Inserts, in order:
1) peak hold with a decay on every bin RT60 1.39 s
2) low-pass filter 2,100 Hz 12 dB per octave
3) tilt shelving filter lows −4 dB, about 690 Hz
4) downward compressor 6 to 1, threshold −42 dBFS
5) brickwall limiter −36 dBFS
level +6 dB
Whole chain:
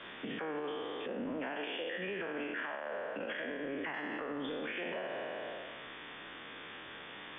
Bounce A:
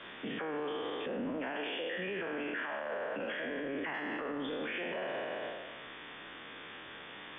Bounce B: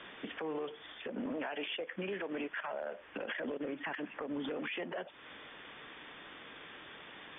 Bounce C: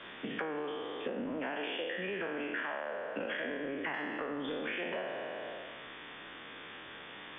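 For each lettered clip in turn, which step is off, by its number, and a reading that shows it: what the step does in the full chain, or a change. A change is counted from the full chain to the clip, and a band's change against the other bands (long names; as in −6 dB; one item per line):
4, average gain reduction 10.0 dB
1, change in momentary loudness spread +3 LU
5, change in crest factor +8.0 dB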